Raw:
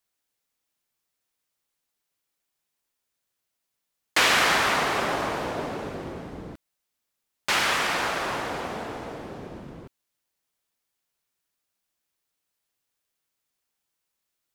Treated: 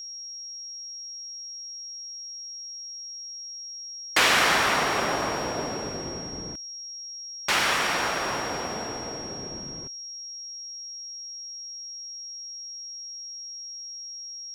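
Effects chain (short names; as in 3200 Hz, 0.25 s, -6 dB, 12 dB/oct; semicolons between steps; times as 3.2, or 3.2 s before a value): whine 5600 Hz -36 dBFS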